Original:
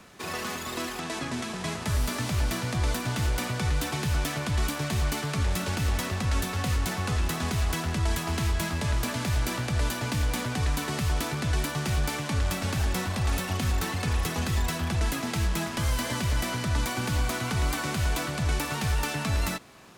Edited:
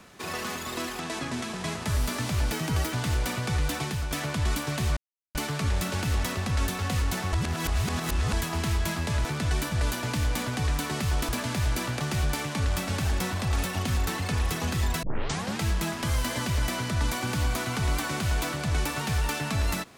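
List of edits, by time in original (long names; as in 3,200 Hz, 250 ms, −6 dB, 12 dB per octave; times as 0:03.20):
0:02.52–0:03.05: play speed 130%
0:03.93–0:04.23: fade out, to −7.5 dB
0:05.09: splice in silence 0.38 s
0:07.07–0:08.07: reverse
0:08.99–0:09.70: swap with 0:11.27–0:11.74
0:14.77: tape start 0.57 s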